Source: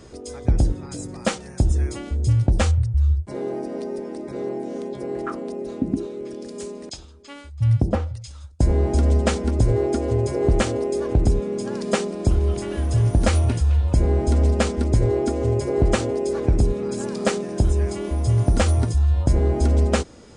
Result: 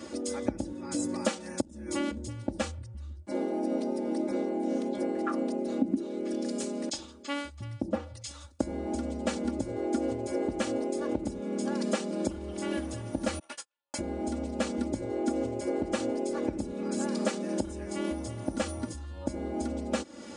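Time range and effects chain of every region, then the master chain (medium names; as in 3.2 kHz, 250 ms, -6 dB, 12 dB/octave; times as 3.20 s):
1.61–2.17 s: compression 12:1, threshold -26 dBFS + transformer saturation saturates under 190 Hz
13.39–13.99 s: high-pass 990 Hz + gate -39 dBFS, range -50 dB + doubling 19 ms -14 dB
whole clip: compression 4:1, threshold -31 dBFS; Chebyshev high-pass 180 Hz, order 2; comb 3.5 ms, depth 99%; trim +1.5 dB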